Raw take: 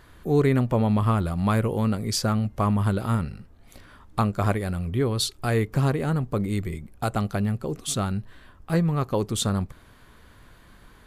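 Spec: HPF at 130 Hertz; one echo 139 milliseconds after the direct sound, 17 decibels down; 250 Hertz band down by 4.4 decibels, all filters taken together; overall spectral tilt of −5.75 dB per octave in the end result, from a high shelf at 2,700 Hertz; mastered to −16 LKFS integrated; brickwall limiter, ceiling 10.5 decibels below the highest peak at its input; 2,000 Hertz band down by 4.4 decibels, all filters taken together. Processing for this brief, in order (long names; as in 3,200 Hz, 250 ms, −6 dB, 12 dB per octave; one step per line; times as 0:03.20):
high-pass filter 130 Hz
parametric band 250 Hz −5 dB
parametric band 2,000 Hz −4.5 dB
high-shelf EQ 2,700 Hz −3.5 dB
brickwall limiter −20.5 dBFS
single-tap delay 139 ms −17 dB
level +15.5 dB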